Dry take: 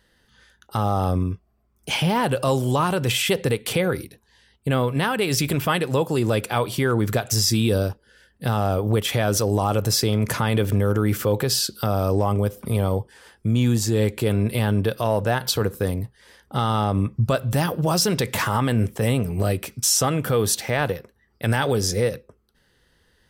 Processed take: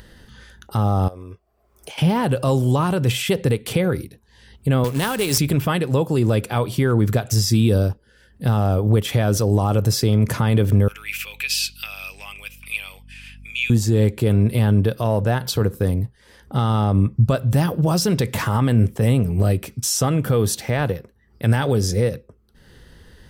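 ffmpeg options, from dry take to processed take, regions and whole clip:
-filter_complex "[0:a]asettb=1/sr,asplit=3[a][b][c];[a]atrim=end=1.084[d];[b]atrim=start=1.08:end=1.98,asetpts=PTS-STARTPTS,afade=t=in:d=0.004:c=qsin,afade=t=out:st=0.896:d=0.004:c=qsin,lowshelf=f=320:t=q:w=1.5:g=-14,acompressor=threshold=-34dB:ratio=8:attack=3.2:release=140:knee=1:detection=peak[e];[c]atrim=start=1.976[f];[d][e]acrossfade=d=0.004:c1=hsin:c2=qsin[g];[g][f]acrossfade=d=0.004:c1=qsin:c2=hsin,asettb=1/sr,asplit=3[h][i][j];[h]atrim=end=4.844[k];[i]atrim=start=4.84:end=5.38,asetpts=PTS-STARTPTS,afade=t=in:d=0.004:c=qsin,afade=t=out:st=0.536:d=0.004:c=qsin,highpass=f=61:w=0.5412,highpass=f=61:w=1.3066,bass=f=250:g=-5,treble=f=4k:g=10,acrusher=bits=2:mode=log:mix=0:aa=0.000001[l];[j]atrim=start=5.376[m];[k][l]acrossfade=d=0.004:c1=hsin:c2=qsin[n];[n][m]acrossfade=d=0.004:c1=qsin:c2=hsin,asettb=1/sr,asplit=3[o][p][q];[o]atrim=end=10.884[r];[p]atrim=start=10.88:end=13.7,asetpts=PTS-STARTPTS,afade=t=in:d=0.004:c=qsin,afade=t=out:st=2.816:d=0.004:c=qsin,highpass=f=2.5k:t=q:w=13,aeval=exprs='val(0)+0.00251*(sin(2*PI*50*n/s)+sin(2*PI*2*50*n/s)/2+sin(2*PI*3*50*n/s)/3+sin(2*PI*4*50*n/s)/4+sin(2*PI*5*50*n/s)/5)':c=same[s];[q]atrim=start=13.696[t];[r][s]acrossfade=d=0.004:c1=hsin:c2=qsin[u];[u][t]acrossfade=d=0.004:c1=qsin:c2=hsin,lowshelf=f=350:g=9,acompressor=mode=upward:threshold=-31dB:ratio=2.5,volume=-2.5dB"

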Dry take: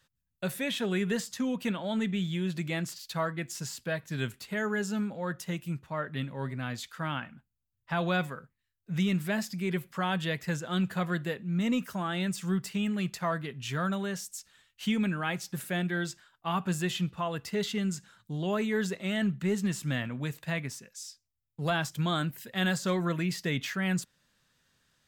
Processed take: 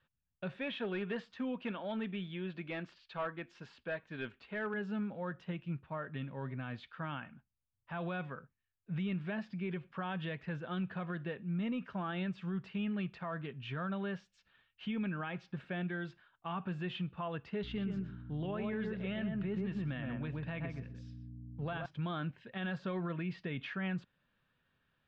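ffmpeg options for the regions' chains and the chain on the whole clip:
-filter_complex "[0:a]asettb=1/sr,asplit=3[a][b][c];[a]atrim=end=0.564[d];[b]atrim=start=0.56:end=4.74,asetpts=PTS-STARTPTS,afade=t=in:d=0.004:c=qsin,afade=t=out:st=4.176:d=0.004:c=qsin,equalizer=f=130:w=1.3:g=-11.5,asoftclip=type=hard:threshold=-26.5dB[e];[c]atrim=start=4.736[f];[d][e]acrossfade=d=0.004:c1=hsin:c2=qsin[g];[g][f]acrossfade=d=0.004:c1=qsin:c2=hsin,asettb=1/sr,asplit=3[h][i][j];[h]atrim=end=17.634[k];[i]atrim=start=17.63:end=21.86,asetpts=PTS-STARTPTS,afade=t=in:d=0.004:c=qsin,afade=t=out:st=4.226:d=0.004:c=qsin,aeval=exprs='val(0)+0.00891*(sin(2*PI*60*n/s)+sin(2*PI*2*60*n/s)/2+sin(2*PI*3*60*n/s)/3+sin(2*PI*4*60*n/s)/4+sin(2*PI*5*60*n/s)/5)':c=same,asplit=2[l][m];[m]adelay=124,lowpass=f=1.3k:p=1,volume=-3dB,asplit=2[n][o];[o]adelay=124,lowpass=f=1.3k:p=1,volume=0.18,asplit=2[p][q];[q]adelay=124,lowpass=f=1.3k:p=1,volume=0.18[r];[l][n][p][r]amix=inputs=4:normalize=0,atrim=end_sample=186543[s];[j]atrim=start=21.856[t];[k][s]acrossfade=d=0.004:c1=hsin:c2=qsin[u];[u][t]acrossfade=d=0.004:c1=qsin:c2=hsin,lowpass=f=3k:w=0.5412,lowpass=f=3k:w=1.3066,bandreject=f=2k:w=11,alimiter=level_in=1.5dB:limit=-24dB:level=0:latency=1:release=89,volume=-1.5dB,volume=-4.5dB"

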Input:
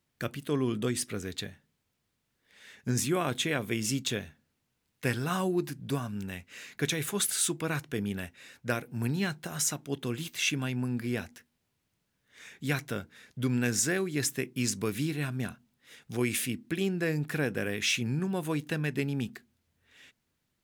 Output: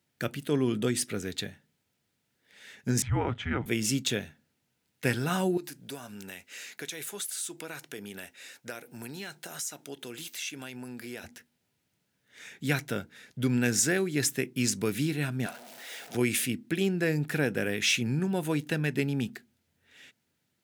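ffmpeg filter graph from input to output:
-filter_complex "[0:a]asettb=1/sr,asplit=3[a][b][c];[a]atrim=end=3.024[d];[b]atrim=start=3.02:end=3.66,asetpts=PTS-STARTPTS,afade=t=in:d=0.004:c=qsin,afade=t=out:st=0.636:d=0.004:c=qsin,lowpass=1.8k,afreqshift=-240[e];[c]atrim=start=3.656[f];[d][e]acrossfade=d=0.004:c1=hsin:c2=qsin[g];[g][f]acrossfade=d=0.004:c1=qsin:c2=hsin,asettb=1/sr,asplit=3[h][i][j];[h]atrim=end=5.574[k];[i]atrim=start=5.57:end=11.24,asetpts=PTS-STARTPTS,afade=t=in:d=0.004:c=qsin,afade=t=out:st=5.666:d=0.004:c=qsin,bass=f=250:g=-13,treble=f=4k:g=5,acompressor=threshold=-41dB:ratio=2.5:attack=3.2:release=140:knee=1:detection=peak[l];[j]atrim=start=11.236[m];[k][l]acrossfade=d=0.004:c1=hsin:c2=qsin[n];[n][m]acrossfade=d=0.004:c1=qsin:c2=hsin,asettb=1/sr,asplit=3[o][p][q];[o]atrim=end=15.464[r];[p]atrim=start=15.46:end=16.15,asetpts=PTS-STARTPTS,afade=t=in:d=0.004:c=qsin,afade=t=out:st=0.686:d=0.004:c=qsin,aeval=exprs='val(0)+0.5*0.00794*sgn(val(0))':c=same,highpass=420,equalizer=f=670:w=3.5:g=9[s];[q]atrim=start=16.146[t];[r][s]acrossfade=d=0.004:c1=hsin:c2=qsin[u];[u][t]acrossfade=d=0.004:c1=qsin:c2=hsin,highpass=100,bandreject=f=1.1k:w=6.5,volume=2.5dB"

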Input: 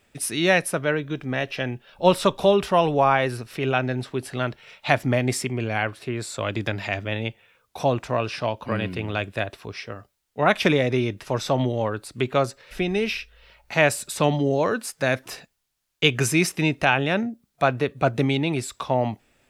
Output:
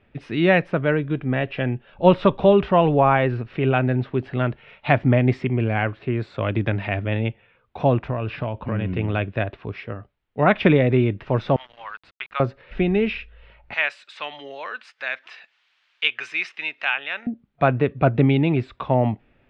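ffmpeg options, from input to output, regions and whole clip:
-filter_complex "[0:a]asettb=1/sr,asplit=3[a][b][c];[a]atrim=end=8.084[d];[b]atrim=start=8.08:end=8.94,asetpts=PTS-STARTPTS,afade=t=in:d=0.004:c=qsin,afade=t=out:st=0.856:d=0.004:c=qsin,lowpass=4.8k,lowshelf=f=69:g=12,acompressor=threshold=-25dB:ratio=4:attack=3.2:release=140:knee=1:detection=peak[e];[c]atrim=start=8.936[f];[d][e]acrossfade=d=0.004:c1=hsin:c2=qsin[g];[g][f]acrossfade=d=0.004:c1=qsin:c2=hsin,asettb=1/sr,asplit=3[h][i][j];[h]atrim=end=11.564[k];[i]atrim=start=11.56:end=12.4,asetpts=PTS-STARTPTS,afade=t=in:d=0.004:c=qsin,afade=t=out:st=0.836:d=0.004:c=qsin,highpass=f=1.1k:w=0.5412,highpass=f=1.1k:w=1.3066,aeval=exprs='val(0)*gte(abs(val(0)),0.00668)':c=same[l];[j]atrim=start=12.396[m];[k][l]acrossfade=d=0.004:c1=hsin:c2=qsin[n];[n][m]acrossfade=d=0.004:c1=qsin:c2=hsin,asettb=1/sr,asplit=3[o][p][q];[o]atrim=end=13.744[r];[p]atrim=start=13.74:end=17.27,asetpts=PTS-STARTPTS,afade=t=in:d=0.004:c=qsin,afade=t=out:st=3.526:d=0.004:c=qsin,highpass=1.5k,aemphasis=mode=production:type=cd,acompressor=mode=upward:threshold=-31dB:ratio=2.5:attack=3.2:release=140:knee=2.83:detection=peak[s];[q]atrim=start=17.266[t];[r][s]acrossfade=d=0.004:c1=hsin:c2=qsin[u];[u][t]acrossfade=d=0.004:c1=qsin:c2=hsin,lowpass=f=3k:w=0.5412,lowpass=f=3k:w=1.3066,lowshelf=f=370:g=7.5"

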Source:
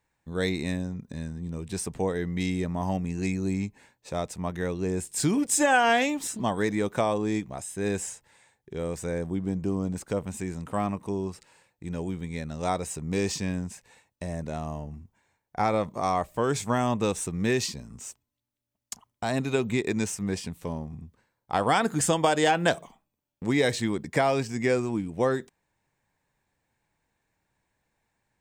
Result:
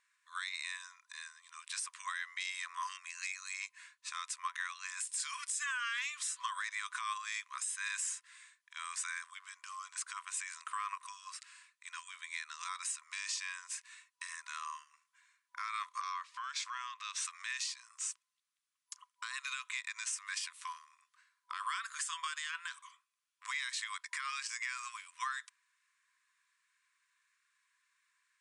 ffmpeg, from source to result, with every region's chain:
-filter_complex "[0:a]asettb=1/sr,asplit=3[a][b][c];[a]atrim=end=16.014[d];[b]atrim=start=16.01:end=17.25,asetpts=PTS-STARTPTS,afade=t=in:d=0.004:c=qsin,afade=t=out:st=1.236:d=0.004:c=qsin,highshelf=f=6.8k:t=q:w=1.5:g=-11,acompressor=threshold=-32dB:ratio=12:attack=3.2:release=140:knee=1:detection=peak[e];[c]atrim=start=17.246[f];[d][e]acrossfade=d=0.004:c1=hsin:c2=qsin[g];[g][f]acrossfade=d=0.004:c1=qsin:c2=hsin,afftfilt=real='re*between(b*sr/4096,990,11000)':imag='im*between(b*sr/4096,990,11000)':win_size=4096:overlap=0.75,acompressor=threshold=-35dB:ratio=6,alimiter=level_in=6.5dB:limit=-24dB:level=0:latency=1:release=84,volume=-6.5dB,volume=3.5dB"

